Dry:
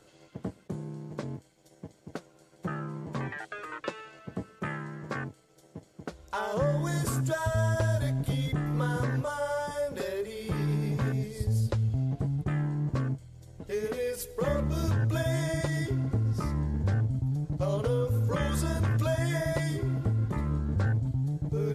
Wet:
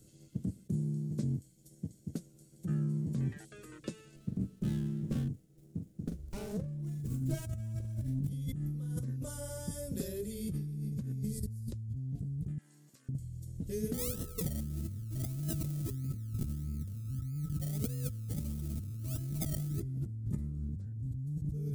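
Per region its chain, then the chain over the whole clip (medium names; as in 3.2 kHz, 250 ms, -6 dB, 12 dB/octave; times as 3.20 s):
4.16–8.28 s: treble shelf 3.8 kHz -6.5 dB + doubling 42 ms -6.5 dB + sliding maximum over 9 samples
12.58–13.09 s: high-pass 1.3 kHz + compression 10:1, threshold -50 dBFS
13.93–19.79 s: decimation with a swept rate 27×, swing 60% 1.6 Hz + whistle 1.3 kHz -39 dBFS
whole clip: FFT filter 210 Hz 0 dB, 960 Hz -29 dB, 9 kHz -9 dB; compressor with a negative ratio -36 dBFS, ratio -1; treble shelf 6 kHz +12 dB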